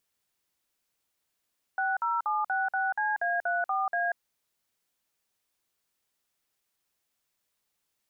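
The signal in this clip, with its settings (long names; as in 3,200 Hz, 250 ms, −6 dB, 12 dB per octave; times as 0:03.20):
touch tones "60766CA34A", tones 188 ms, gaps 51 ms, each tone −28 dBFS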